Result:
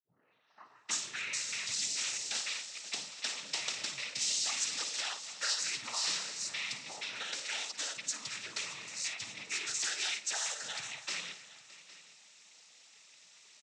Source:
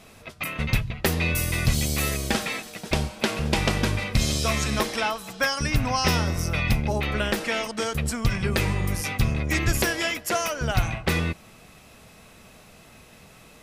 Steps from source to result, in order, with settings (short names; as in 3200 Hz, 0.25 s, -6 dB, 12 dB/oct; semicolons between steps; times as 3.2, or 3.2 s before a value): tape start at the beginning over 1.60 s; in parallel at +2.5 dB: limiter -16.5 dBFS, peak gain reduction 7 dB; on the sum: noise vocoder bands 12; band-pass 6300 Hz, Q 1.1; tapped delay 53/249/616/810 ms -12.5/-17.5/-19/-19 dB; gain -7 dB